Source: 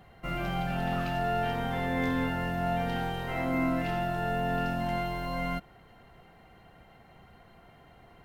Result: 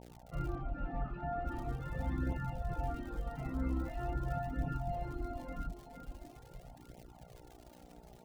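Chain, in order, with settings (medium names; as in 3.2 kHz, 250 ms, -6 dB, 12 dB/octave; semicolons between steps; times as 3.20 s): octave divider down 2 oct, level +2 dB; bass shelf 250 Hz -7.5 dB; reverberation RT60 0.20 s, pre-delay 77 ms; crackle 140 per s -51 dBFS; echo that smears into a reverb 476 ms, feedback 47%, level -6.5 dB; mains buzz 60 Hz, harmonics 15, -61 dBFS -2 dB/octave; flange 0.43 Hz, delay 0.3 ms, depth 4.7 ms, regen -34%; reverb removal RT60 1.2 s; 0.55–1.46 s: low-pass 2.3 kHz 12 dB/octave; trim +10.5 dB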